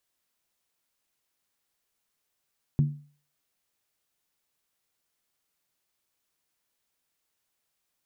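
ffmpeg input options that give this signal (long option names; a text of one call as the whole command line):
ffmpeg -f lavfi -i "aevalsrc='0.158*pow(10,-3*t/0.42)*sin(2*PI*146*t)+0.0447*pow(10,-3*t/0.333)*sin(2*PI*232.7*t)+0.0126*pow(10,-3*t/0.287)*sin(2*PI*311.9*t)+0.00355*pow(10,-3*t/0.277)*sin(2*PI*335.2*t)+0.001*pow(10,-3*t/0.258)*sin(2*PI*387.3*t)':duration=0.63:sample_rate=44100" out.wav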